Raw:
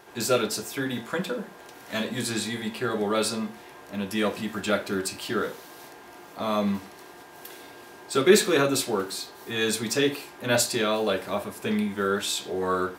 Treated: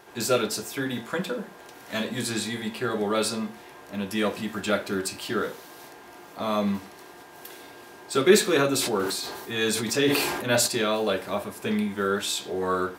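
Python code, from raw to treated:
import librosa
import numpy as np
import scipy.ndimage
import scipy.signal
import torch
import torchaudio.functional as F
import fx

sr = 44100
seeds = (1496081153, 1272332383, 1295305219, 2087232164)

y = fx.sustainer(x, sr, db_per_s=36.0, at=(8.8, 10.66), fade=0.02)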